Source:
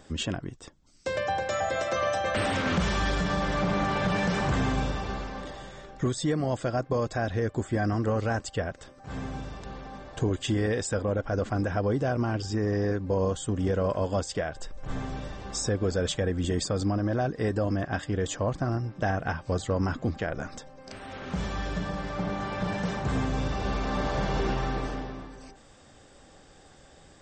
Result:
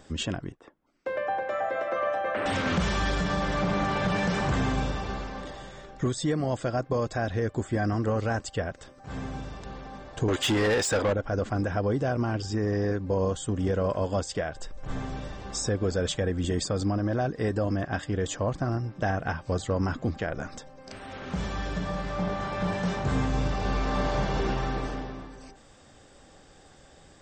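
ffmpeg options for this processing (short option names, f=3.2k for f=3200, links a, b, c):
-filter_complex "[0:a]asettb=1/sr,asplit=3[a][b][c];[a]atrim=end=0.524[d];[b]atrim=start=0.52:end=2.46,asetpts=PTS-STARTPTS,afade=t=in:d=0.004:c=qsin,afade=t=out:st=1.936:d=0.004:c=qsin,acrossover=split=240 2400:gain=0.126 1 0.0631[e][f][g];[e][f][g]amix=inputs=3:normalize=0[h];[c]atrim=start=2.456[i];[d][h]acrossfade=d=0.004:c1=hsin:c2=qsin[j];[j][i]acrossfade=d=0.004:c1=qsin:c2=hsin,asettb=1/sr,asplit=3[k][l][m];[k]atrim=end=10.284[n];[l]atrim=start=10.28:end=11.13,asetpts=PTS-STARTPTS,afade=t=in:d=0.004:c=qsin,afade=t=out:st=0.846:d=0.004:c=qsin,asplit=2[o][p];[p]highpass=f=720:p=1,volume=21dB,asoftclip=type=tanh:threshold=-17dB[q];[o][q]amix=inputs=2:normalize=0,lowpass=f=5k:p=1,volume=-6dB[r];[m]atrim=start=11.126[s];[n][r]acrossfade=d=0.004:c1=hsin:c2=qsin[t];[t][s]acrossfade=d=0.004:c1=qsin:c2=hsin,asettb=1/sr,asplit=3[u][v][w];[u]atrim=end=21.814[x];[v]atrim=start=21.81:end=24.23,asetpts=PTS-STARTPTS,afade=t=in:d=0.004:c=qsin,afade=t=out:st=2.416:d=0.004:c=qsin,asplit=2[y][z];[z]adelay=22,volume=-6dB[aa];[y][aa]amix=inputs=2:normalize=0,atrim=end_sample=106722[ab];[w]atrim=start=24.226[ac];[x][ab]acrossfade=d=0.004:c1=hsin:c2=qsin[ad];[ad][ac]acrossfade=d=0.004:c1=qsin:c2=hsin"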